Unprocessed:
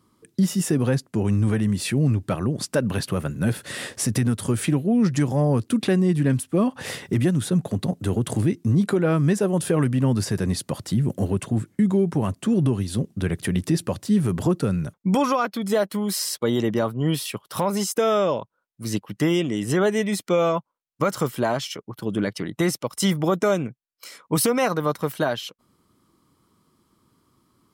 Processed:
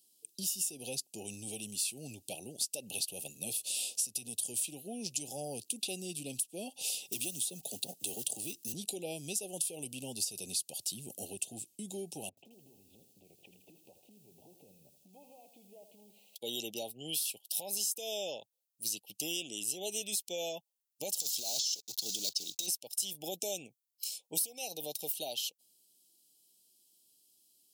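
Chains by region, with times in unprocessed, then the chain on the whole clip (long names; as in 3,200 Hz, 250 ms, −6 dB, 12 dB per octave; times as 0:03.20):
0:07.12–0:08.74: one scale factor per block 7 bits + low-shelf EQ 69 Hz −10.5 dB + multiband upward and downward compressor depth 70%
0:12.29–0:16.36: inverse Chebyshev low-pass filter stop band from 4,800 Hz, stop band 50 dB + downward compressor 8 to 1, threshold −35 dBFS + feedback echo at a low word length 81 ms, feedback 55%, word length 10 bits, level −10 dB
0:21.20–0:22.68: one scale factor per block 5 bits + flat-topped bell 5,100 Hz +13.5 dB 1.2 octaves + compressor whose output falls as the input rises −25 dBFS
whole clip: Chebyshev band-stop filter 800–2,600 Hz, order 4; first difference; downward compressor 6 to 1, threshold −37 dBFS; level +5.5 dB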